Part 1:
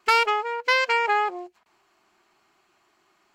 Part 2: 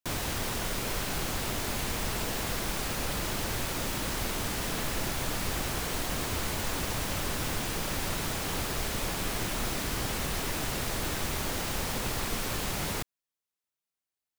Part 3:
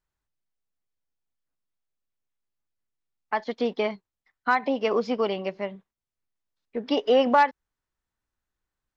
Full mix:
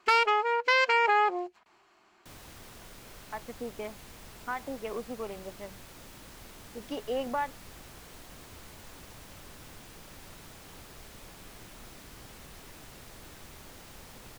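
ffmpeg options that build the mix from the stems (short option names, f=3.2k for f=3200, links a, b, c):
-filter_complex "[0:a]highshelf=f=9.1k:g=-9.5,volume=2dB[a];[1:a]adelay=2200,volume=-17dB[b];[2:a]afwtdn=0.0126,volume=-12.5dB[c];[a][b][c]amix=inputs=3:normalize=0,alimiter=limit=-14dB:level=0:latency=1:release=253"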